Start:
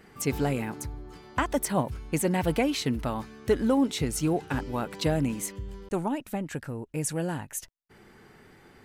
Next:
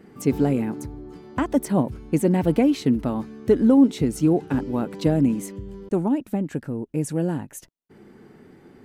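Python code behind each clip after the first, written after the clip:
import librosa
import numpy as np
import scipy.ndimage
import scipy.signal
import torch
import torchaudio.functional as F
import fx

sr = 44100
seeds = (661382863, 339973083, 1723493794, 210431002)

y = fx.peak_eq(x, sr, hz=260.0, db=14.0, octaves=2.5)
y = F.gain(torch.from_numpy(y), -4.5).numpy()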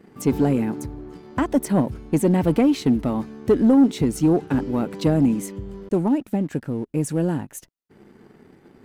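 y = fx.leveller(x, sr, passes=1)
y = F.gain(torch.from_numpy(y), -1.5).numpy()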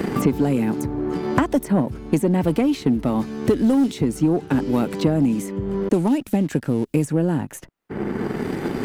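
y = fx.band_squash(x, sr, depth_pct=100)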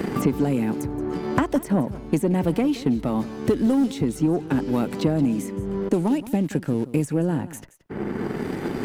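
y = x + 10.0 ** (-16.5 / 20.0) * np.pad(x, (int(175 * sr / 1000.0), 0))[:len(x)]
y = F.gain(torch.from_numpy(y), -2.5).numpy()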